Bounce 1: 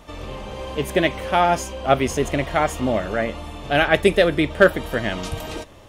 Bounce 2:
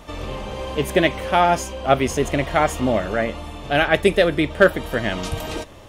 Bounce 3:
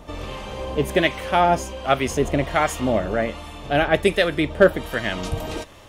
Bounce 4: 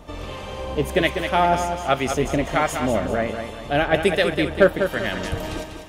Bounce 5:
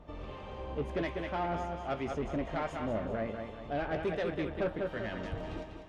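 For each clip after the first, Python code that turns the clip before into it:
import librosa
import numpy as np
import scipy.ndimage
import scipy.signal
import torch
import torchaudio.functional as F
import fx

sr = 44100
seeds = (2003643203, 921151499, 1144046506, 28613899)

y1 = fx.rider(x, sr, range_db=4, speed_s=2.0)
y2 = fx.harmonic_tremolo(y1, sr, hz=1.3, depth_pct=50, crossover_hz=930.0)
y2 = y2 * librosa.db_to_amplitude(1.0)
y3 = fx.echo_feedback(y2, sr, ms=196, feedback_pct=41, wet_db=-7.5)
y3 = y3 * librosa.db_to_amplitude(-1.0)
y4 = 10.0 ** (-17.0 / 20.0) * np.tanh(y3 / 10.0 ** (-17.0 / 20.0))
y4 = fx.spacing_loss(y4, sr, db_at_10k=24)
y4 = fx.doubler(y4, sr, ms=18.0, db=-12)
y4 = y4 * librosa.db_to_amplitude(-9.0)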